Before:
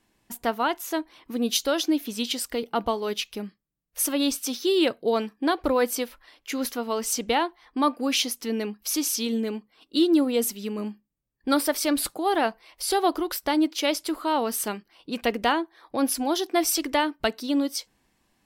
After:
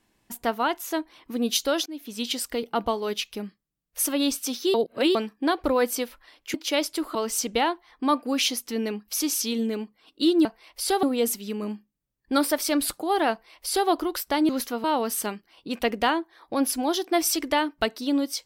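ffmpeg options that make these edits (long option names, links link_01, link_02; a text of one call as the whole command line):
ffmpeg -i in.wav -filter_complex "[0:a]asplit=10[link_01][link_02][link_03][link_04][link_05][link_06][link_07][link_08][link_09][link_10];[link_01]atrim=end=1.86,asetpts=PTS-STARTPTS,afade=type=out:start_time=1.856:duration=0.004:curve=hsin:silence=0.0630957[link_11];[link_02]atrim=start=1.86:end=4.742,asetpts=PTS-STARTPTS,afade=type=in:duration=0.44:silence=0.0630957[link_12];[link_03]atrim=start=4.738:end=5.152,asetpts=PTS-STARTPTS,areverse[link_13];[link_04]atrim=start=5.148:end=6.542[link_14];[link_05]atrim=start=13.648:end=14.262[link_15];[link_06]atrim=start=6.888:end=10.192[link_16];[link_07]atrim=start=12.468:end=13.052[link_17];[link_08]atrim=start=10.188:end=13.652[link_18];[link_09]atrim=start=6.538:end=6.892[link_19];[link_10]atrim=start=14.258[link_20];[link_11][link_12]concat=n=2:v=0:a=1[link_21];[link_21][link_13]acrossfade=duration=0.004:curve1=hsin:curve2=hsin[link_22];[link_22][link_14]acrossfade=duration=0.004:curve1=hsin:curve2=hsin[link_23];[link_23][link_15]acrossfade=duration=0.004:curve1=hsin:curve2=hsin[link_24];[link_24][link_16]acrossfade=duration=0.004:curve1=hsin:curve2=hsin[link_25];[link_25][link_17]acrossfade=duration=0.004:curve1=hsin:curve2=hsin[link_26];[link_26][link_18]acrossfade=duration=0.004:curve1=hsin:curve2=hsin[link_27];[link_27][link_19]acrossfade=duration=0.004:curve1=hsin:curve2=hsin[link_28];[link_28][link_20]acrossfade=duration=0.004:curve1=hsin:curve2=hsin" out.wav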